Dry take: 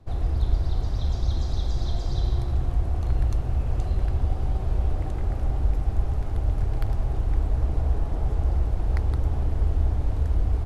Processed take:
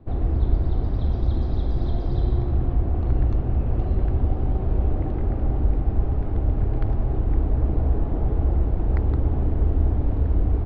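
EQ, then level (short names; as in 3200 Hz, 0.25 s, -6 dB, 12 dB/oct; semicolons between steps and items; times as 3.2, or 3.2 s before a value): air absorption 340 m; bell 280 Hz +8.5 dB 1.7 oct; +1.5 dB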